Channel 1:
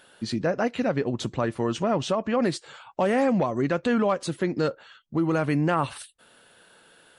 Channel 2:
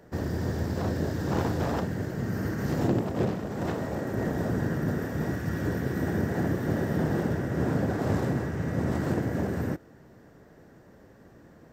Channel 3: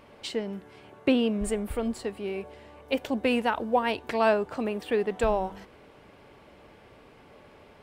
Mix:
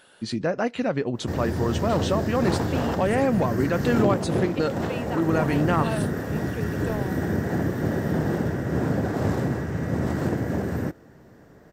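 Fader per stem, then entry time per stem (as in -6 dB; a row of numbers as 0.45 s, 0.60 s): 0.0 dB, +2.5 dB, -9.0 dB; 0.00 s, 1.15 s, 1.65 s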